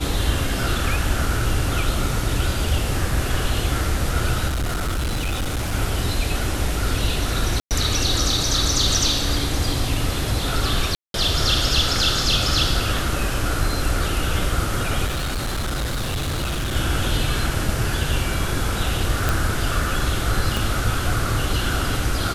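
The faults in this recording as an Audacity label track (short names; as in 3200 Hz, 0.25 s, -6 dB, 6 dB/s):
4.470000	5.740000	clipped -20 dBFS
7.600000	7.710000	gap 0.108 s
10.950000	11.140000	gap 0.192 s
15.060000	16.760000	clipped -21 dBFS
19.290000	19.290000	pop
20.570000	20.570000	pop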